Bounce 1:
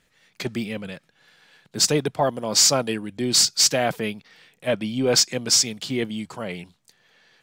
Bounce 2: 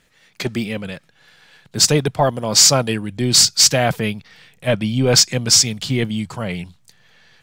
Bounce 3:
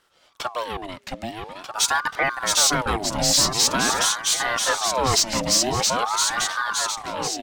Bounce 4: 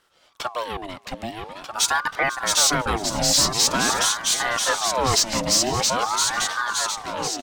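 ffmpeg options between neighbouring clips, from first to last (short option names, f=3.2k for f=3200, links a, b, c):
-af "asubboost=boost=4.5:cutoff=140,volume=5.5dB"
-af "aecho=1:1:670|1240|1724|2135|2485:0.631|0.398|0.251|0.158|0.1,acontrast=46,aeval=exprs='val(0)*sin(2*PI*880*n/s+880*0.55/0.46*sin(2*PI*0.46*n/s))':c=same,volume=-8dB"
-af "aecho=1:1:497|994|1491:0.112|0.0359|0.0115"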